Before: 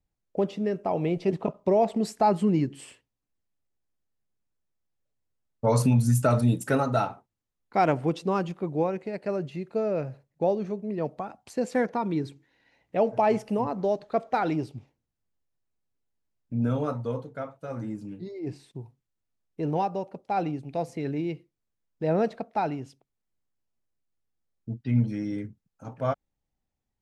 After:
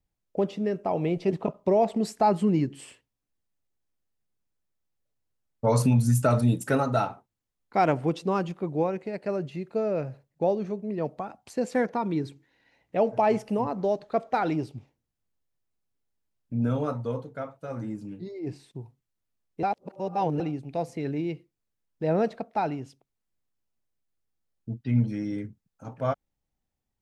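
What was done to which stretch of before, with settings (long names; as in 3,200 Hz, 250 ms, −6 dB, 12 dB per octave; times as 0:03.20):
0:19.63–0:20.40: reverse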